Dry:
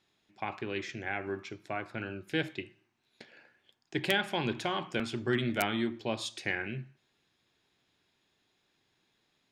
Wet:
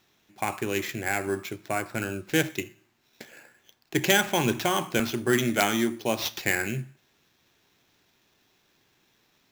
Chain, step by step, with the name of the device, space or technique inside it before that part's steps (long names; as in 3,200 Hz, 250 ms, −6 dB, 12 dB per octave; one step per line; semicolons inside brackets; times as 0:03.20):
early companding sampler (sample-rate reduction 9,400 Hz, jitter 0%; log-companded quantiser 8 bits)
0:05.11–0:06.19: high-pass filter 160 Hz 6 dB per octave
level +7.5 dB